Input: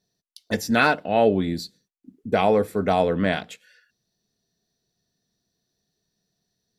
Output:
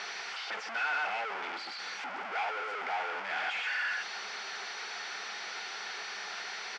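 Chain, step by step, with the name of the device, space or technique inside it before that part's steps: 2.29–2.84 bell 210 Hz -6.5 dB 1 oct; HPF 910 Hz 6 dB/oct; thirty-one-band EQ 200 Hz +8 dB, 400 Hz +6 dB, 630 Hz -7 dB, 1250 Hz -10 dB, 10000 Hz -7 dB; echo 0.12 s -13 dB; home computer beeper (infinite clipping; speaker cabinet 740–4300 Hz, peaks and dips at 810 Hz +8 dB, 1400 Hz +9 dB, 2200 Hz +6 dB, 3900 Hz -8 dB); gain -3 dB

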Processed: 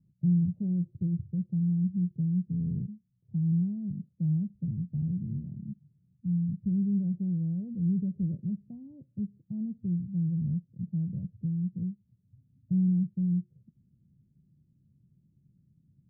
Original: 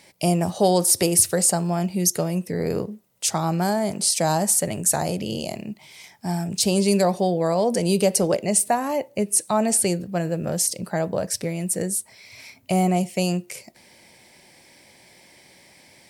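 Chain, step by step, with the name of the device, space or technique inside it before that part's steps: the neighbour's flat through the wall (LPF 180 Hz 24 dB/oct; bell 140 Hz +6 dB 0.72 oct); gain -2.5 dB

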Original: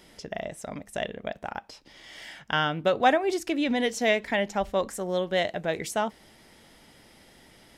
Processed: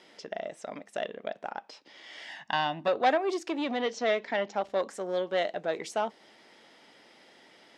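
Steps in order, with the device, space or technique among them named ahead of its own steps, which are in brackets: 3.77–4.6 LPF 6500 Hz 24 dB/oct; public-address speaker with an overloaded transformer (core saturation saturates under 1400 Hz; BPF 320–5300 Hz); dynamic EQ 2100 Hz, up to -4 dB, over -43 dBFS, Q 0.84; 2.29–2.88 comb 1.1 ms, depth 82%

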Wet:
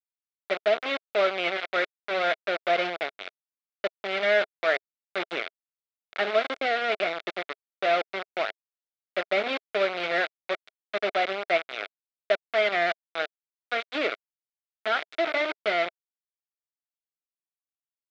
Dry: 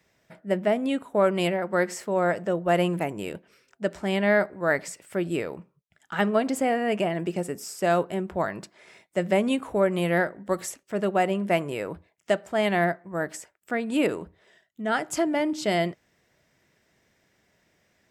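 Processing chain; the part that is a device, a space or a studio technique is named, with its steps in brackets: hand-held game console (bit-crush 4-bit; speaker cabinet 410–4100 Hz, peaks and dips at 420 Hz +4 dB, 650 Hz +8 dB, 950 Hz -7 dB, 1400 Hz +7 dB, 2200 Hz +9 dB, 3600 Hz +6 dB); gain -6 dB

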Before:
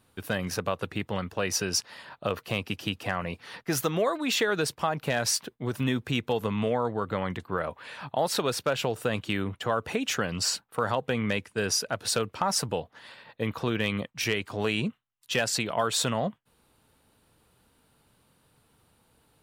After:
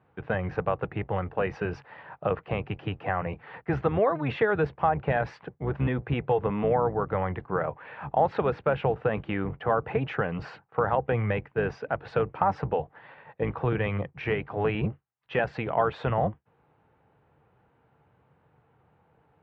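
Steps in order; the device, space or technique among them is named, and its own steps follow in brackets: sub-octave bass pedal (octaver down 1 oct, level -2 dB; speaker cabinet 81–2200 Hz, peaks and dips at 140 Hz +6 dB, 240 Hz -6 dB, 460 Hz +4 dB, 790 Hz +7 dB)

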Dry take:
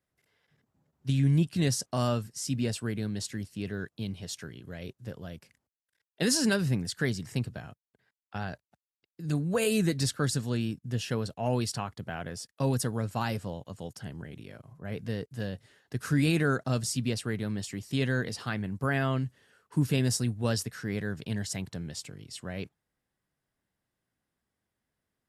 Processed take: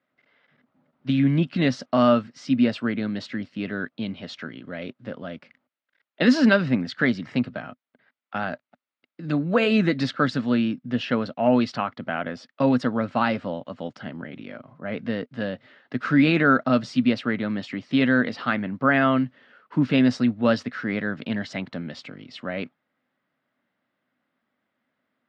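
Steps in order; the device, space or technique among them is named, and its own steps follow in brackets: kitchen radio (speaker cabinet 210–3800 Hz, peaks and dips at 250 Hz +9 dB, 410 Hz -5 dB, 590 Hz +6 dB, 1300 Hz +7 dB, 2100 Hz +4 dB); gain +7 dB

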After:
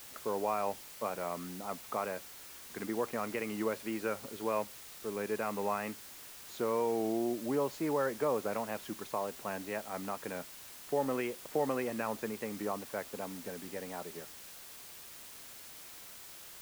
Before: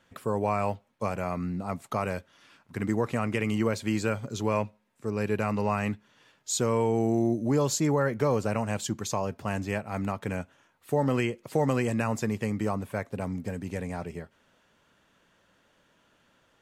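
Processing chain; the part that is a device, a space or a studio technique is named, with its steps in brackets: wax cylinder (BPF 300–2100 Hz; wow and flutter; white noise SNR 13 dB); gain -4.5 dB

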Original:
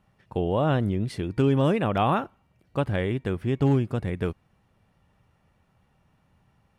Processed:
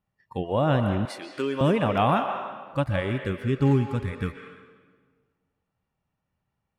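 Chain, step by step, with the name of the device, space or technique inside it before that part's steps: spectral noise reduction 17 dB; filtered reverb send (on a send: HPF 500 Hz 12 dB/oct + LPF 5900 Hz 12 dB/oct + reverb RT60 1.6 s, pre-delay 0.12 s, DRR 5 dB); 1.05–1.61 on the sum: HPF 430 Hz 12 dB/oct; gain +1 dB

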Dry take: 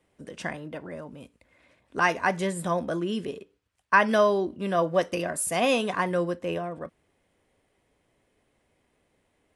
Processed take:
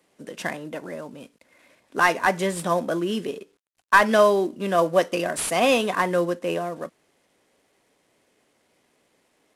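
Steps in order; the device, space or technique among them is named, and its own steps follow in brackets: early wireless headset (HPF 190 Hz 12 dB/oct; CVSD 64 kbps); gain +4.5 dB

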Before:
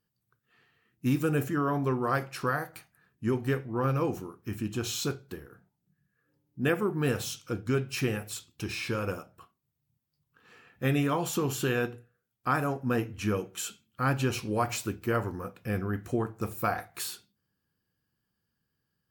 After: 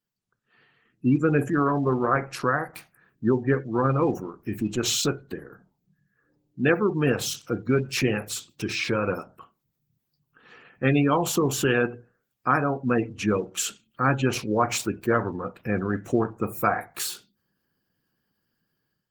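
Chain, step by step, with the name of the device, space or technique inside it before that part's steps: HPF 60 Hz 12 dB/oct; noise-suppressed video call (HPF 130 Hz 12 dB/oct; spectral gate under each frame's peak -25 dB strong; AGC gain up to 12.5 dB; gain -5 dB; Opus 16 kbps 48000 Hz)

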